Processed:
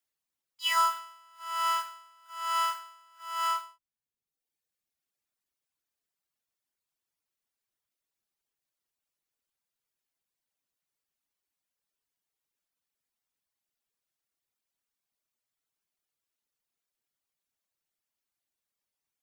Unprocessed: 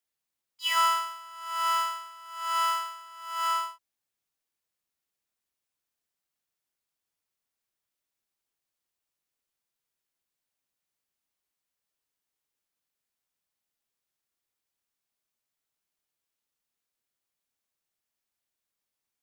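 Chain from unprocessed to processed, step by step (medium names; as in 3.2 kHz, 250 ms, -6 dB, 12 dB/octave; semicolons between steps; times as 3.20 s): reverb removal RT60 1.1 s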